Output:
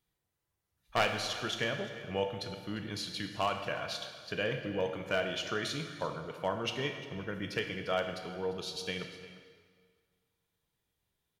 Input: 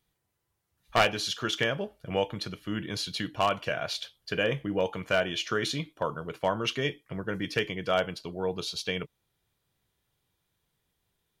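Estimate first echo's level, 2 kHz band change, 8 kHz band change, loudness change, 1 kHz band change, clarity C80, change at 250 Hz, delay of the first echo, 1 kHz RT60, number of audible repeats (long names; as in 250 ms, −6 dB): −17.5 dB, −5.0 dB, −5.0 dB, −5.0 dB, −5.0 dB, 8.0 dB, −5.5 dB, 349 ms, 1.8 s, 1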